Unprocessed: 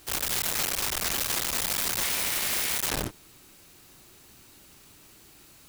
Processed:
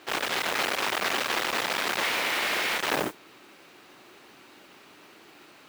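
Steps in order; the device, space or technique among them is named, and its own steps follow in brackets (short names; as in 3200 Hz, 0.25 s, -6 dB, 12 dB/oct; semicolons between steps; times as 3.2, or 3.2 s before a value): carbon microphone (BPF 310–2800 Hz; soft clip -24 dBFS, distortion -23 dB; modulation noise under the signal 13 dB); gain +8.5 dB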